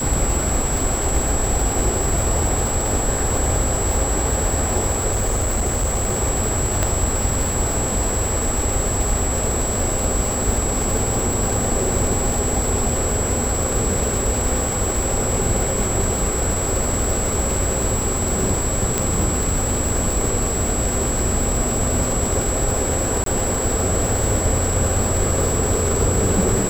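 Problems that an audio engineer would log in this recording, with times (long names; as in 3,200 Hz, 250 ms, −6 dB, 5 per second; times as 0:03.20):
surface crackle 540 per second −23 dBFS
whistle 7,700 Hz −24 dBFS
0:05.10–0:06.17: clipping −15.5 dBFS
0:06.83: click −4 dBFS
0:18.98: click −4 dBFS
0:23.24–0:23.26: drop-out 23 ms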